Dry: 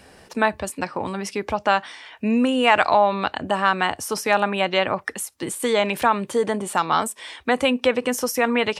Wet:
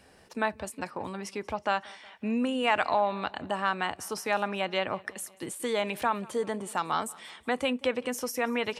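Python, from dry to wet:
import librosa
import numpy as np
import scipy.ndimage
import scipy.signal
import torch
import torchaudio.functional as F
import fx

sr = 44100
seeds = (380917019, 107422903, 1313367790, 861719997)

y = fx.echo_feedback(x, sr, ms=184, feedback_pct=56, wet_db=-23.5)
y = y * 10.0 ** (-9.0 / 20.0)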